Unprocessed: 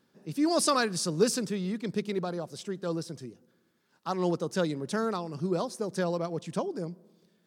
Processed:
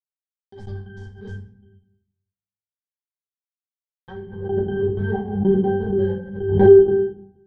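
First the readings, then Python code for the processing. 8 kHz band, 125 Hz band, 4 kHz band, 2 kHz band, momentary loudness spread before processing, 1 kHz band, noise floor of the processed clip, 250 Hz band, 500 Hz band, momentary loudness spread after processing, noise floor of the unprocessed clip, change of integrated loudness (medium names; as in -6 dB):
under -35 dB, +9.5 dB, under -10 dB, +0.5 dB, 12 LU, 0.0 dB, under -85 dBFS, +6.5 dB, +12.5 dB, 25 LU, -70 dBFS, +12.5 dB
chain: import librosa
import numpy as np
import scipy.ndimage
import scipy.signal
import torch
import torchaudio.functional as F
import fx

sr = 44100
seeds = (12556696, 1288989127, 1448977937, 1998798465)

y = fx.filter_sweep_bandpass(x, sr, from_hz=7200.0, to_hz=700.0, start_s=3.91, end_s=4.44, q=2.6)
y = scipy.signal.sosfilt(scipy.signal.butter(4, 95.0, 'highpass', fs=sr, output='sos'), y)
y = fx.env_lowpass(y, sr, base_hz=870.0, full_db=-34.5)
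y = fx.high_shelf(y, sr, hz=11000.0, db=6.0)
y = fx.level_steps(y, sr, step_db=11)
y = fx.rotary(y, sr, hz=6.0)
y = fx.fuzz(y, sr, gain_db=55.0, gate_db=-55.0)
y = fx.riaa(y, sr, side='playback')
y = fx.octave_resonator(y, sr, note='G', decay_s=0.77)
y = fx.step_gate(y, sr, bpm=157, pattern='x.xx...x.x', floor_db=-24.0, edge_ms=4.5)
y = fx.room_shoebox(y, sr, seeds[0], volume_m3=70.0, walls='mixed', distance_m=1.1)
y = fx.pre_swell(y, sr, db_per_s=68.0)
y = y * 10.0 ** (8.0 / 20.0)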